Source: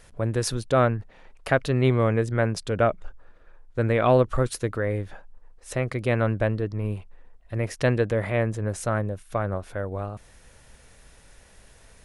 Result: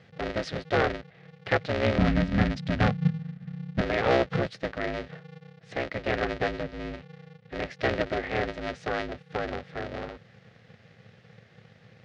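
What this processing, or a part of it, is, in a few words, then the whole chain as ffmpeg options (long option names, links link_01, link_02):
ring modulator pedal into a guitar cabinet: -filter_complex "[0:a]aeval=exprs='val(0)*sgn(sin(2*PI*160*n/s))':channel_layout=same,highpass=81,equalizer=frequency=110:width_type=q:width=4:gain=9,equalizer=frequency=290:width_type=q:width=4:gain=-8,equalizer=frequency=520:width_type=q:width=4:gain=5,equalizer=frequency=980:width_type=q:width=4:gain=-9,equalizer=frequency=1900:width_type=q:width=4:gain=5,lowpass=frequency=4500:width=0.5412,lowpass=frequency=4500:width=1.3066,asettb=1/sr,asplit=3[link_01][link_02][link_03];[link_01]atrim=end=1.984[link_04];[link_02]atrim=start=1.98:end=3.81,asetpts=PTS-STARTPTS,afade=type=in:duration=0.004:curve=qsin,afade=type=out:start_time=1.826:duration=0.004:curve=qsin,lowshelf=frequency=290:width_type=q:width=3:gain=9.5[link_05];[link_03]atrim=start=3.806[link_06];[link_04][link_05]acrossfade=duration=0.004:curve1=hsin:curve2=qsin[link_07];[link_07][link_06]acrossfade=duration=0.004:curve1=qsin:curve2=hsin,volume=-4dB"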